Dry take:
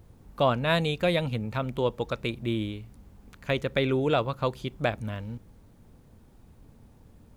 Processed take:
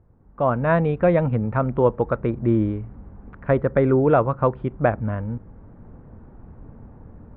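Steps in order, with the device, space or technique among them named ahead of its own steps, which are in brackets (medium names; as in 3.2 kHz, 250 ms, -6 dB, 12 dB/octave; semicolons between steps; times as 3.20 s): 2.00–4.03 s: dynamic bell 2.6 kHz, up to -6 dB, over -48 dBFS, Q 2.6; action camera in a waterproof case (low-pass 1.6 kHz 24 dB/octave; level rider gain up to 15 dB; trim -4 dB; AAC 128 kbps 48 kHz)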